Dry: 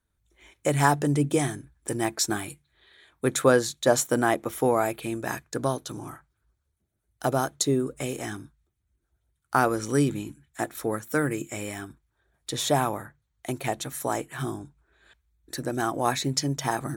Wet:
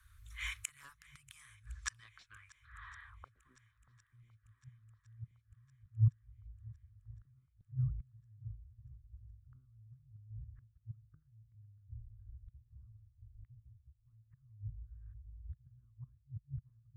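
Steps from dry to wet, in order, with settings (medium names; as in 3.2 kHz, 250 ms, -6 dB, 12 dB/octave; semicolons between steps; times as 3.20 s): 11.76–13.92 s: octave divider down 1 oct, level -1 dB; Chebyshev band-stop 110–1100 Hz, order 5; peaking EQ 14 kHz -10 dB 2.2 oct; compression 1.5:1, threshold -45 dBFS, peak gain reduction 8.5 dB; one-sided clip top -35 dBFS; inverted gate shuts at -38 dBFS, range -36 dB; low-pass sweep 13 kHz -> 130 Hz, 1.39–4.04 s; shuffle delay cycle 1060 ms, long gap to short 1.5:1, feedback 49%, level -23 dB; trim +17 dB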